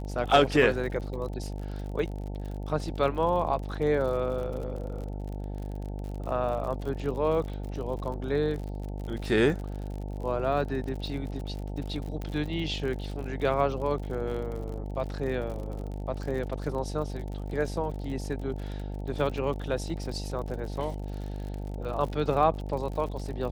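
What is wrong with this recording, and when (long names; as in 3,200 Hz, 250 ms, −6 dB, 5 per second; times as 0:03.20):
mains buzz 50 Hz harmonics 18 −35 dBFS
surface crackle 54 per second −36 dBFS
0:12.22: click −23 dBFS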